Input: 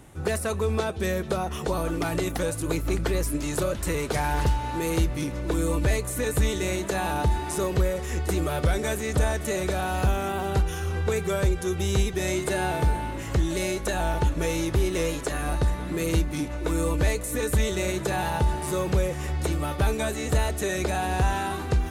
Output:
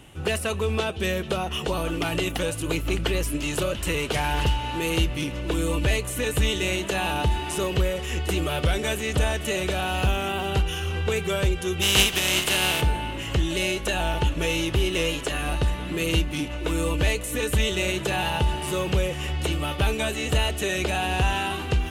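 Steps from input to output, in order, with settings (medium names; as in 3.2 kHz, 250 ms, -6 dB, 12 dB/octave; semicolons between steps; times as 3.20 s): 11.81–12.80 s: spectral contrast reduction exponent 0.49; peaking EQ 2.9 kHz +14.5 dB 0.46 oct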